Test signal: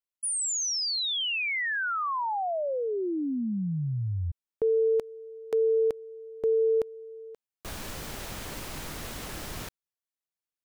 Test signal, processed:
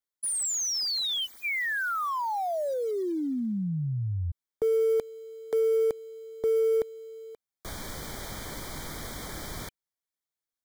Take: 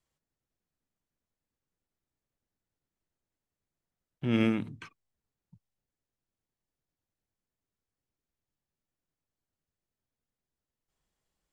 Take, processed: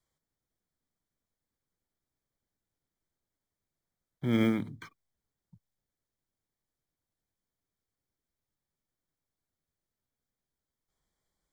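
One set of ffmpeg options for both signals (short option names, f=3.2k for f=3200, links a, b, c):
-filter_complex "[0:a]acrossover=split=390[a][b];[b]acrusher=bits=5:mode=log:mix=0:aa=0.000001[c];[a][c]amix=inputs=2:normalize=0,asuperstop=centerf=2700:order=20:qfactor=4.4"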